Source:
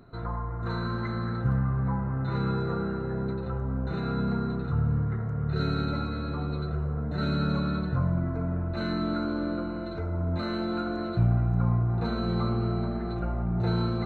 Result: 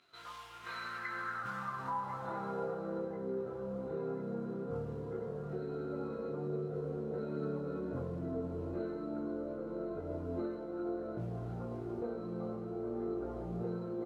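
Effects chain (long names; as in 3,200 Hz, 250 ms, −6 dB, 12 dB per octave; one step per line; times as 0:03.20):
on a send: feedback delay with all-pass diffusion 549 ms, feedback 73%, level −14.5 dB
on the sum: noise that follows the level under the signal 20 dB
band-pass filter sweep 3,000 Hz → 430 Hz, 0:00.38–0:03.24
repeating echo 1,041 ms, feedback 60%, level −19 dB
downward compressor, threshold −40 dBFS, peak gain reduction 8.5 dB
multi-voice chorus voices 6, 0.28 Hz, delay 22 ms, depth 3.2 ms
level +8 dB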